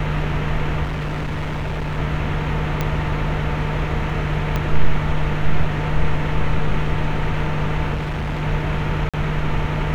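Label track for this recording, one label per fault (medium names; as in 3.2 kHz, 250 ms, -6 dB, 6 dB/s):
0.830000	1.990000	clipped -21 dBFS
2.810000	2.810000	pop -8 dBFS
4.560000	4.560000	pop -9 dBFS
7.940000	8.430000	clipped -20.5 dBFS
9.090000	9.140000	dropout 46 ms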